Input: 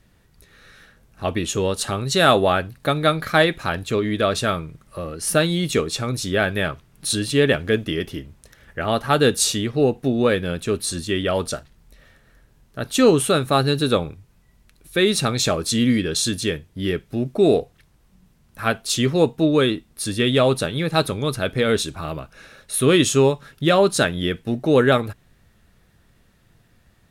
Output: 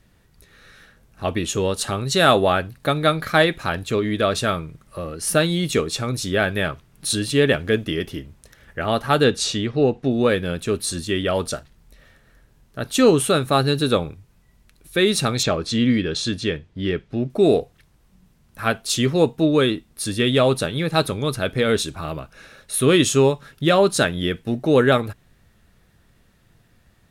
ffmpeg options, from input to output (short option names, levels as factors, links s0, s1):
-filter_complex "[0:a]asettb=1/sr,asplit=3[s0][s1][s2];[s0]atrim=end=9.244[s3];[s1]atrim=start=9.24:end=10.11,asetpts=PTS-STARTPTS,afade=t=in:d=0.004:c=qsin,afade=t=out:st=0.866:d=0.004:c=qsin,lowpass=5600[s4];[s2]atrim=start=10.106[s5];[s3][s4]acrossfade=d=0.004:c1=hsin:c2=qsin[s6];[s6][s5]acrossfade=d=0.004:c1=qsin:c2=hsin,asettb=1/sr,asplit=3[s7][s8][s9];[s7]atrim=end=15.434[s10];[s8]atrim=start=15.43:end=17.3,asetpts=PTS-STARTPTS,afade=t=in:d=0.004:c=qsin,afade=t=out:st=1.866:d=0.004:c=qsin,lowpass=4600[s11];[s9]atrim=start=17.296[s12];[s10][s11]acrossfade=d=0.004:c1=hsin:c2=qsin[s13];[s13][s12]acrossfade=d=0.004:c1=qsin:c2=hsin"